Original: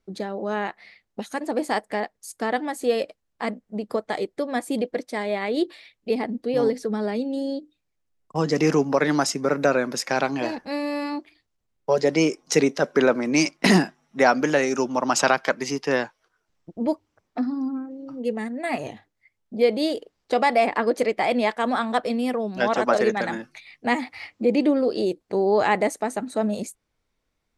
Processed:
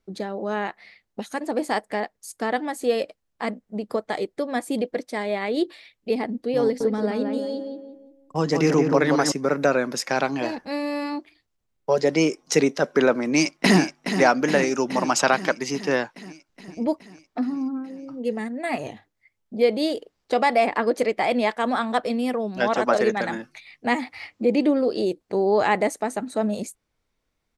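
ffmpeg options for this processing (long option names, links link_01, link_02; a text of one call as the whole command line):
ffmpeg -i in.wav -filter_complex "[0:a]asettb=1/sr,asplit=3[link_01][link_02][link_03];[link_01]atrim=end=6.634[link_04];[link_02]atrim=start=6.63:end=9.32,asetpts=PTS-STARTPTS,afade=type=in:duration=0.004:curve=qsin,afade=type=out:start_time=2.686:duration=0.004:curve=qsin,asplit=2[link_05][link_06];[link_06]adelay=174,lowpass=frequency=1800:poles=1,volume=-4dB,asplit=2[link_07][link_08];[link_08]adelay=174,lowpass=frequency=1800:poles=1,volume=0.41,asplit=2[link_09][link_10];[link_10]adelay=174,lowpass=frequency=1800:poles=1,volume=0.41,asplit=2[link_11][link_12];[link_12]adelay=174,lowpass=frequency=1800:poles=1,volume=0.41,asplit=2[link_13][link_14];[link_14]adelay=174,lowpass=frequency=1800:poles=1,volume=0.41[link_15];[link_05][link_07][link_09][link_11][link_13][link_15]amix=inputs=6:normalize=0,atrim=end_sample=118629[link_16];[link_03]atrim=start=9.316[link_17];[link_04][link_16]acrossfade=duration=0.004:curve1=hsin:curve2=qsin[link_18];[link_18][link_17]acrossfade=duration=0.004:curve1=qsin:curve2=hsin,asplit=2[link_19][link_20];[link_20]afade=type=in:start_time=13.31:duration=0.01,afade=type=out:start_time=13.8:duration=0.01,aecho=0:1:420|840|1260|1680|2100|2520|2940|3360|3780|4200|4620:0.354813|0.248369|0.173859|0.121701|0.0851907|0.0596335|0.0417434|0.0292204|0.0204543|0.014318|0.0100226[link_21];[link_19][link_21]amix=inputs=2:normalize=0" out.wav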